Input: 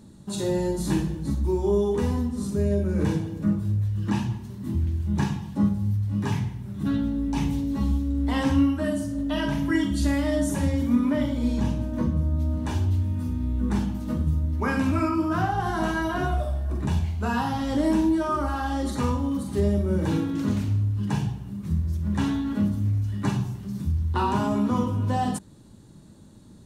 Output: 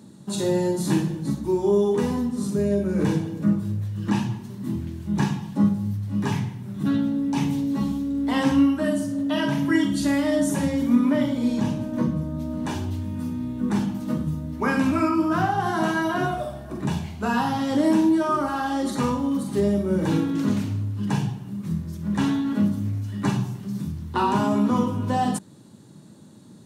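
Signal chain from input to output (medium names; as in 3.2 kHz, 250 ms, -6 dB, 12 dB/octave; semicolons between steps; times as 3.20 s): high-pass 120 Hz 24 dB/octave; trim +3 dB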